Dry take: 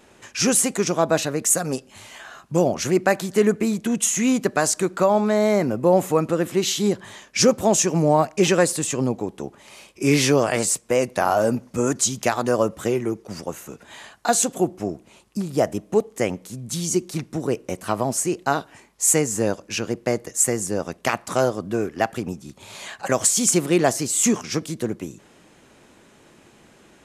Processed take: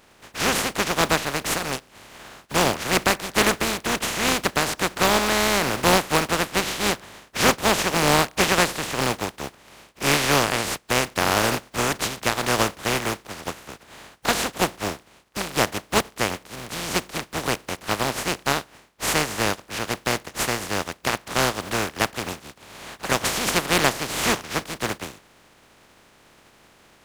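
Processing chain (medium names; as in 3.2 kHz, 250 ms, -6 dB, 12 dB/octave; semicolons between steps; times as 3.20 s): spectral contrast reduction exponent 0.19; low-pass 1.8 kHz 6 dB/octave; trim +4 dB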